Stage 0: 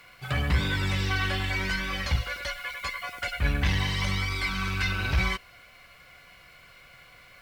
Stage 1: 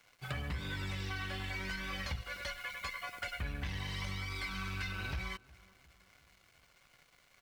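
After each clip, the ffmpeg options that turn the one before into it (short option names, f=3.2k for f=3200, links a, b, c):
-filter_complex "[0:a]acompressor=threshold=-30dB:ratio=6,aeval=exprs='sgn(val(0))*max(abs(val(0))-0.00251,0)':c=same,asplit=2[a][b];[b]adelay=361,lowpass=f=1.4k:p=1,volume=-21dB,asplit=2[c][d];[d]adelay=361,lowpass=f=1.4k:p=1,volume=0.55,asplit=2[e][f];[f]adelay=361,lowpass=f=1.4k:p=1,volume=0.55,asplit=2[g][h];[h]adelay=361,lowpass=f=1.4k:p=1,volume=0.55[i];[a][c][e][g][i]amix=inputs=5:normalize=0,volume=-5dB"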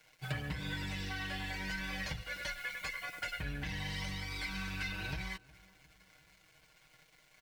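-af "bandreject=f=1.2k:w=5.6,aecho=1:1:6.4:0.65"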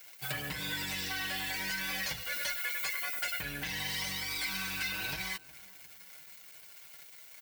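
-filter_complex "[0:a]aemphasis=mode=production:type=bsi,asplit=2[a][b];[b]alimiter=level_in=8.5dB:limit=-24dB:level=0:latency=1,volume=-8.5dB,volume=0dB[c];[a][c]amix=inputs=2:normalize=0,volume=-1.5dB"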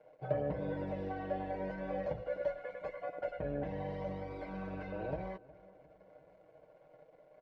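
-af "lowpass=f=570:t=q:w=4.9,volume=3dB"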